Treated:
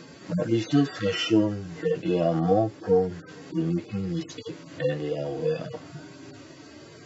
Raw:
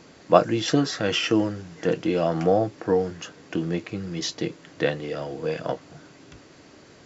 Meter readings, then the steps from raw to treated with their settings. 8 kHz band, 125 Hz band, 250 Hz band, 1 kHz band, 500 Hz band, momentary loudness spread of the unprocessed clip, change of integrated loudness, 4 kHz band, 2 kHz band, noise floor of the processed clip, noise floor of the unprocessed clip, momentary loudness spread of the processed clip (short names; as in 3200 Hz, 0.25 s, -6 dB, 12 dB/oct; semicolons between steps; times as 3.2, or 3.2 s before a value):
n/a, +1.5 dB, 0.0 dB, -5.5 dB, -2.0 dB, 12 LU, -1.5 dB, -4.5 dB, -5.0 dB, -47 dBFS, -51 dBFS, 21 LU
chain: median-filter separation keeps harmonic; in parallel at +1 dB: compressor, threshold -38 dBFS, peak gain reduction 19.5 dB